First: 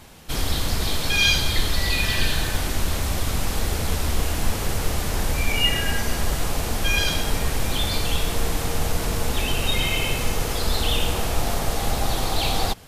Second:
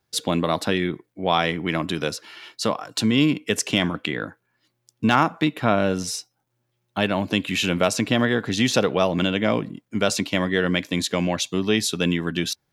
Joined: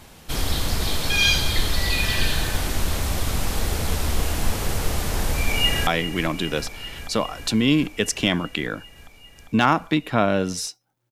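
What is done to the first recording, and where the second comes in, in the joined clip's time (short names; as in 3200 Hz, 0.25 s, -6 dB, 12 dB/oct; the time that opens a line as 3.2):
first
5.36–5.87 echo throw 0.4 s, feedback 80%, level -12 dB
5.87 switch to second from 1.37 s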